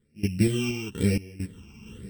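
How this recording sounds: a buzz of ramps at a fixed pitch in blocks of 16 samples; phasing stages 8, 1 Hz, lowest notch 530–1100 Hz; random-step tremolo 4.3 Hz, depth 95%; a shimmering, thickened sound

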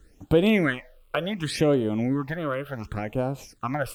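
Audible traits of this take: a quantiser's noise floor 12-bit, dither none; phasing stages 8, 0.69 Hz, lowest notch 230–1900 Hz; AAC

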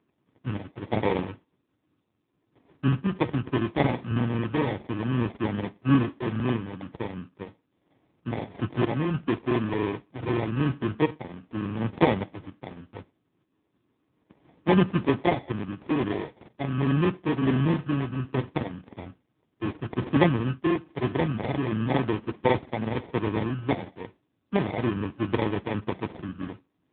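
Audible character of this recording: a buzz of ramps at a fixed pitch in blocks of 32 samples; random-step tremolo; aliases and images of a low sample rate 1.4 kHz, jitter 0%; AMR-NB

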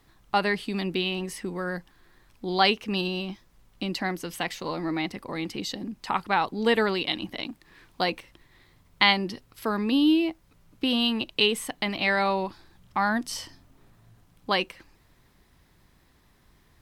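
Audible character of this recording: noise floor -61 dBFS; spectral tilt -4.0 dB/octave

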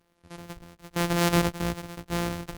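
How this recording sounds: a buzz of ramps at a fixed pitch in blocks of 256 samples; random-step tremolo 3.3 Hz, depth 85%; Opus

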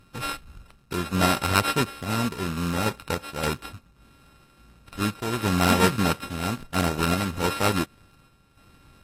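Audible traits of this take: a buzz of ramps at a fixed pitch in blocks of 32 samples; random-step tremolo; aliases and images of a low sample rate 6.6 kHz, jitter 0%; AAC

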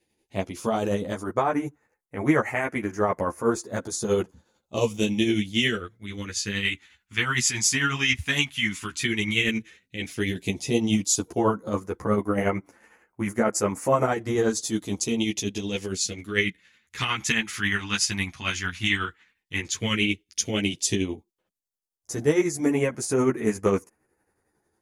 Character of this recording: phasing stages 2, 0.096 Hz, lowest notch 480–3300 Hz; tremolo triangle 11 Hz, depth 55%; a shimmering, thickened sound

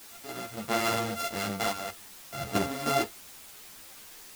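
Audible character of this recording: a buzz of ramps at a fixed pitch in blocks of 64 samples; random-step tremolo, depth 85%; a quantiser's noise floor 8-bit, dither triangular; a shimmering, thickened sound

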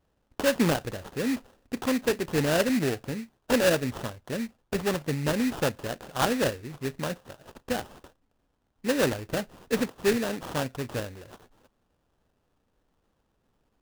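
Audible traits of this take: aliases and images of a low sample rate 2.2 kHz, jitter 20%

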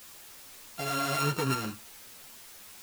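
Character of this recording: a buzz of ramps at a fixed pitch in blocks of 32 samples; tremolo saw up 1.3 Hz, depth 40%; a quantiser's noise floor 8-bit, dither triangular; a shimmering, thickened sound

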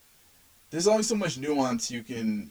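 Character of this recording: tremolo saw down 8.8 Hz, depth 45%; a quantiser's noise floor 10-bit, dither triangular; a shimmering, thickened sound

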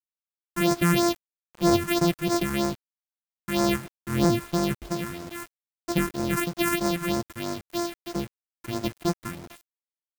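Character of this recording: a buzz of ramps at a fixed pitch in blocks of 128 samples; phasing stages 4, 3.1 Hz, lowest notch 580–2900 Hz; a quantiser's noise floor 8-bit, dither none

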